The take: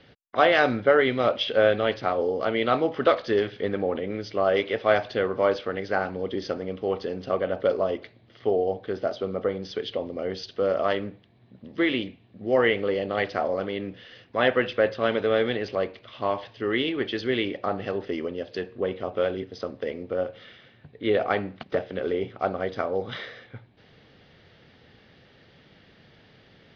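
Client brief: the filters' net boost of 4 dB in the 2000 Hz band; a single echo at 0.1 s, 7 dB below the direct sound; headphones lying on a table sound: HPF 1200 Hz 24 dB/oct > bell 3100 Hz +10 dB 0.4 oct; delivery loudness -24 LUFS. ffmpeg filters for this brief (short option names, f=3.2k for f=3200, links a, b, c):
-af "highpass=f=1.2k:w=0.5412,highpass=f=1.2k:w=1.3066,equalizer=f=2k:t=o:g=4,equalizer=f=3.1k:t=o:w=0.4:g=10,aecho=1:1:100:0.447,volume=2.5dB"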